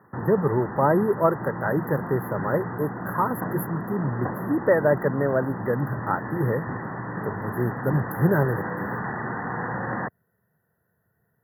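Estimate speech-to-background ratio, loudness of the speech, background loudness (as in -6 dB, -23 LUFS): 6.5 dB, -25.5 LUFS, -32.0 LUFS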